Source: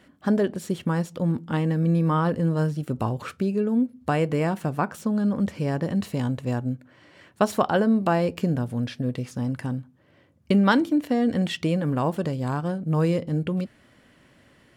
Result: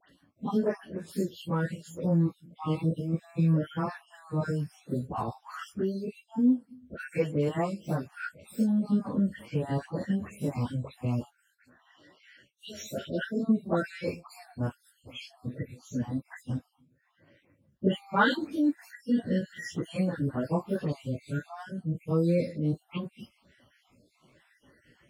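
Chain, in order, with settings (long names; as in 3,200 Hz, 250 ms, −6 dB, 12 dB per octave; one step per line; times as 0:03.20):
time-frequency cells dropped at random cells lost 55%
time stretch by phase vocoder 1.7×
all-pass dispersion highs, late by 91 ms, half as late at 2,100 Hz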